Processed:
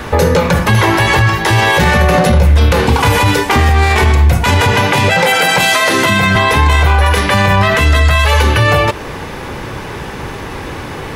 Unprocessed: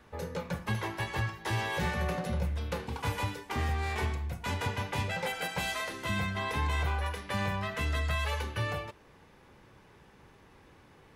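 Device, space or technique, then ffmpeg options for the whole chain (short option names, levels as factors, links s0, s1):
mastering chain: -filter_complex "[0:a]asettb=1/sr,asplit=3[s0][s1][s2];[s0]atrim=end=4.724[s3];[s1]atrim=start=4.72:end=6.36,asetpts=PTS-STARTPTS,afade=t=in:d=0.004:c=qsin,afade=t=out:st=1.636:d=0.004:c=qsin,highpass=f=110:w=0.5412,highpass=f=110:w=1.3066[s4];[s2]atrim=start=6.356[s5];[s3][s4]acrossfade=d=0.004:c1=hsin:c2=qsin[s6];[s6][s5]acrossfade=d=0.004:c1=qsin:c2=hsin,equalizer=f=190:t=o:w=0.39:g=-3,acompressor=threshold=0.00891:ratio=1.5,alimiter=level_in=53.1:limit=0.891:release=50:level=0:latency=1,volume=0.891"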